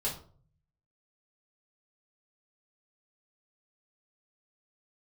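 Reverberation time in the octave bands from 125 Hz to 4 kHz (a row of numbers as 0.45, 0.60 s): 1.0, 0.65, 0.50, 0.45, 0.30, 0.30 s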